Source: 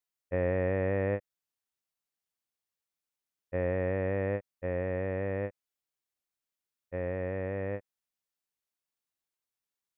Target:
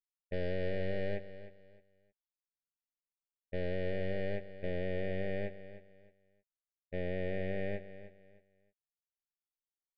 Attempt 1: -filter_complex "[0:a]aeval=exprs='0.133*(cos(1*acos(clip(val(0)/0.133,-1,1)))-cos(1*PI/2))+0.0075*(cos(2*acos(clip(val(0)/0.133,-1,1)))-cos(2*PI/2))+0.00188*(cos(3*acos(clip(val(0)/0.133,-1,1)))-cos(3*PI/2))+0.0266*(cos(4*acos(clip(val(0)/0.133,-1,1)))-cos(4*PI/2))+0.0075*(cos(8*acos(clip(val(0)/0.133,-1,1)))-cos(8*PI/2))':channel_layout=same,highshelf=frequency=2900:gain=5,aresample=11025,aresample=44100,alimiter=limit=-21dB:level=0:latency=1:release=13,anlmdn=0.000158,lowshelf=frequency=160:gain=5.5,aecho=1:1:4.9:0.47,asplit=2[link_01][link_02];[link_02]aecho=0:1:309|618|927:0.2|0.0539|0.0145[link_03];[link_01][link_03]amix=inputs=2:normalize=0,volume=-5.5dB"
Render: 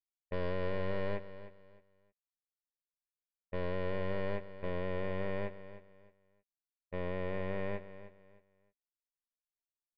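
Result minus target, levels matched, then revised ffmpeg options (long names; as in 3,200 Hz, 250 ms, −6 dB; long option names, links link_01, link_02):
1,000 Hz band +8.5 dB
-filter_complex "[0:a]aeval=exprs='0.133*(cos(1*acos(clip(val(0)/0.133,-1,1)))-cos(1*PI/2))+0.0075*(cos(2*acos(clip(val(0)/0.133,-1,1)))-cos(2*PI/2))+0.00188*(cos(3*acos(clip(val(0)/0.133,-1,1)))-cos(3*PI/2))+0.0266*(cos(4*acos(clip(val(0)/0.133,-1,1)))-cos(4*PI/2))+0.0075*(cos(8*acos(clip(val(0)/0.133,-1,1)))-cos(8*PI/2))':channel_layout=same,asuperstop=centerf=1100:order=12:qfactor=1.5,highshelf=frequency=2900:gain=5,aresample=11025,aresample=44100,alimiter=limit=-21dB:level=0:latency=1:release=13,anlmdn=0.000158,lowshelf=frequency=160:gain=5.5,aecho=1:1:4.9:0.47,asplit=2[link_01][link_02];[link_02]aecho=0:1:309|618|927:0.2|0.0539|0.0145[link_03];[link_01][link_03]amix=inputs=2:normalize=0,volume=-5.5dB"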